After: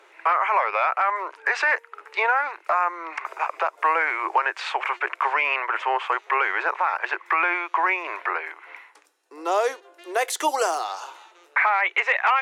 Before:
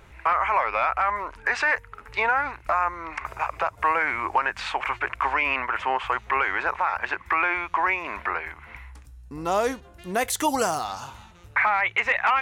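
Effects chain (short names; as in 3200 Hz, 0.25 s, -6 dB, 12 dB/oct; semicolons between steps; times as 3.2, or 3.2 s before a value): steep high-pass 330 Hz 72 dB/oct; high shelf 12000 Hz -12 dB; gain +1.5 dB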